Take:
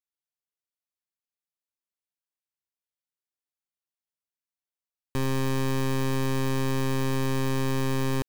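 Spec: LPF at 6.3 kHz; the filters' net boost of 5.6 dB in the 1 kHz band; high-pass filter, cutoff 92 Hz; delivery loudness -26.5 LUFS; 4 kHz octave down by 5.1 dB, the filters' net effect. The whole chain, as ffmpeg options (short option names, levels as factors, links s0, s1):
-af "highpass=92,lowpass=6300,equalizer=f=1000:t=o:g=6.5,equalizer=f=4000:t=o:g=-6.5,volume=1.12"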